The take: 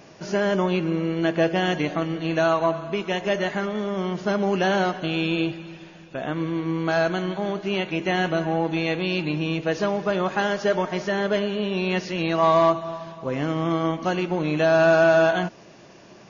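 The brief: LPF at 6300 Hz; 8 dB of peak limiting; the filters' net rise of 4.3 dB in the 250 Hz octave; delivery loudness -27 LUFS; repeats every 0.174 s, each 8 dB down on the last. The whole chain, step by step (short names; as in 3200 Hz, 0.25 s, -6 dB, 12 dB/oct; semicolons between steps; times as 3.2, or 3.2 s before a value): LPF 6300 Hz; bell 250 Hz +7 dB; limiter -15 dBFS; feedback echo 0.174 s, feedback 40%, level -8 dB; gain -3.5 dB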